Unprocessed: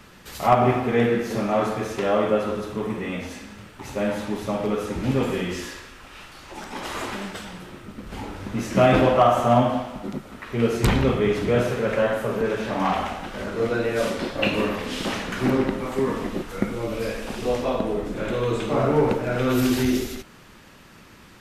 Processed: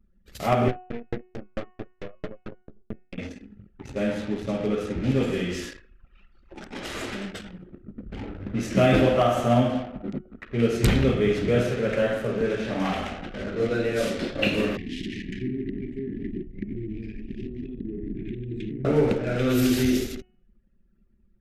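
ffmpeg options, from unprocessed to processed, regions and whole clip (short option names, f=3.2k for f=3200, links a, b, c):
-filter_complex "[0:a]asettb=1/sr,asplit=3[a][b][c];[a]atrim=end=0.684[d];[b]atrim=start=0.68:end=3.18,asetpts=PTS-STARTPTS,afade=t=in:d=0.004:c=qsin,afade=t=out:st=2.496:d=0.004:c=qsin,aeval=exprs='max(val(0),0)':c=same,aeval=exprs='val(0)*pow(10,-34*if(lt(mod(4.5*n/s,1),2*abs(4.5)/1000),1-mod(4.5*n/s,1)/(2*abs(4.5)/1000),(mod(4.5*n/s,1)-2*abs(4.5)/1000)/(1-2*abs(4.5)/1000))/20)':c=same[e];[c]atrim=start=3.176[f];[d][e]acrossfade=d=0.004:c1=hsin:c2=qsin[g];[g][f]acrossfade=d=0.004:c1=qsin:c2=hsin,asettb=1/sr,asplit=3[h][i][j];[h]atrim=end=14.774[k];[i]atrim=start=14.77:end=18.85,asetpts=PTS-STARTPTS,afade=t=in:d=0.004:c=qsin,afade=t=out:st=4.076:d=0.004:c=qsin,acompressor=threshold=-24dB:ratio=6:attack=3.2:release=140:knee=1:detection=peak,asuperstop=centerf=830:order=20:qfactor=0.63,highshelf=f=2.5k:g=-7.5[l];[j]atrim=start=18.846[m];[k][l]acrossfade=d=0.004:c1=hsin:c2=qsin[n];[n][m]acrossfade=d=0.004:c1=qsin:c2=hsin,anlmdn=3.98,equalizer=f=970:t=o:w=0.75:g=-11.5,bandreject=f=366.5:t=h:w=4,bandreject=f=733:t=h:w=4,bandreject=f=1.0995k:t=h:w=4,bandreject=f=1.466k:t=h:w=4,bandreject=f=1.8325k:t=h:w=4,bandreject=f=2.199k:t=h:w=4,bandreject=f=2.5655k:t=h:w=4,bandreject=f=2.932k:t=h:w=4"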